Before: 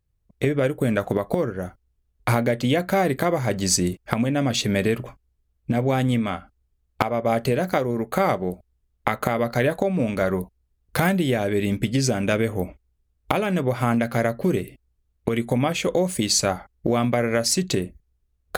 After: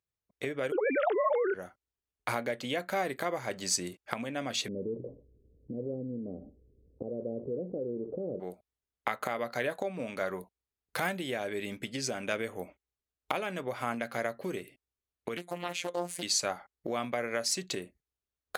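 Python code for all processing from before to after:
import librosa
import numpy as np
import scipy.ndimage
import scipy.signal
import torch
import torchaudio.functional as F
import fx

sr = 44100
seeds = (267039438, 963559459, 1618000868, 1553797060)

y = fx.chain(x, sr, fx.sine_speech(),
    fx.env_flatten(amount_pct=100), at=(0.72, 1.54))
y = fx.chain(y, sr, fx.cheby1_lowpass(hz=510.0, order=5),
    fx.echo_feedback(ms=62, feedback_pct=23, wet_db=-22.5),
    fx.env_flatten(amount_pct=70), at=(4.68, 8.4))
y = fx.chain(y, sr, fx.high_shelf(hz=6700.0, db=6.0),
    fx.robotise(hz=175.0),
    fx.doppler_dist(depth_ms=0.43), at=(15.37, 16.23))
y = fx.highpass(y, sr, hz=660.0, slope=6)
y = fx.high_shelf(y, sr, hz=11000.0, db=-7.5)
y = y * librosa.db_to_amplitude(-7.0)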